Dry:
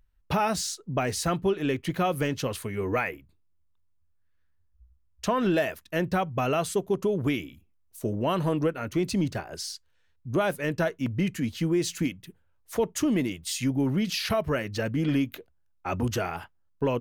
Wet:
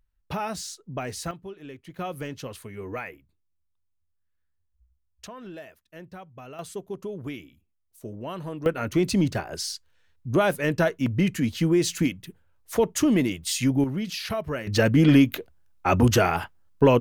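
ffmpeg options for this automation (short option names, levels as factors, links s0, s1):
-af "asetnsamples=n=441:p=0,asendcmd='1.31 volume volume -14.5dB;1.99 volume volume -7dB;5.27 volume volume -16.5dB;6.59 volume volume -8.5dB;8.66 volume volume 4dB;13.84 volume volume -3dB;14.67 volume volume 9dB',volume=0.562"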